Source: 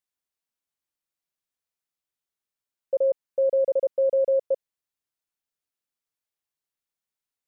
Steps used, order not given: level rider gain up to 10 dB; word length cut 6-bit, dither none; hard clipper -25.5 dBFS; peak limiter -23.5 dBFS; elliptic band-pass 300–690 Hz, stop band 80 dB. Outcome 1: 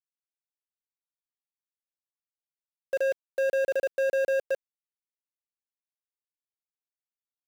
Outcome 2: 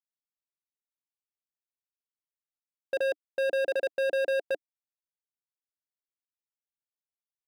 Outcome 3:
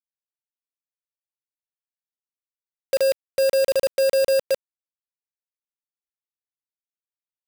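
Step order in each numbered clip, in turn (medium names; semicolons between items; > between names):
elliptic band-pass > hard clipper > level rider > word length cut > peak limiter; word length cut > elliptic band-pass > peak limiter > level rider > hard clipper; peak limiter > hard clipper > elliptic band-pass > word length cut > level rider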